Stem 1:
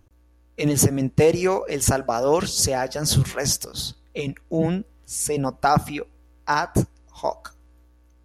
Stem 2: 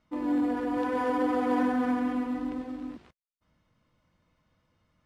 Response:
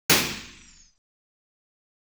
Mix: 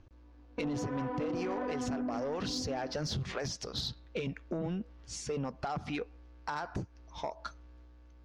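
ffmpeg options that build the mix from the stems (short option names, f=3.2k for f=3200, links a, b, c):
-filter_complex "[0:a]acompressor=threshold=-23dB:ratio=2.5,alimiter=limit=-19.5dB:level=0:latency=1:release=200,volume=-0.5dB,asplit=2[a][b];[1:a]lowpass=f=1.2k:p=1,acrossover=split=630[c][d];[c]aeval=exprs='val(0)*(1-0.7/2+0.7/2*cos(2*PI*1.5*n/s))':c=same[e];[d]aeval=exprs='val(0)*(1-0.7/2-0.7/2*cos(2*PI*1.5*n/s))':c=same[f];[e][f]amix=inputs=2:normalize=0,volume=0dB[g];[b]apad=whole_len=222933[h];[g][h]sidechaingate=range=-33dB:threshold=-53dB:ratio=16:detection=peak[i];[a][i]amix=inputs=2:normalize=0,lowpass=f=5.3k:w=0.5412,lowpass=f=5.3k:w=1.3066,asoftclip=type=tanh:threshold=-23.5dB,acompressor=threshold=-32dB:ratio=6"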